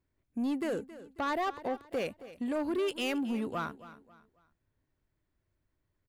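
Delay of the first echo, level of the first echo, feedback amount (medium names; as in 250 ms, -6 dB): 271 ms, -16.0 dB, 34%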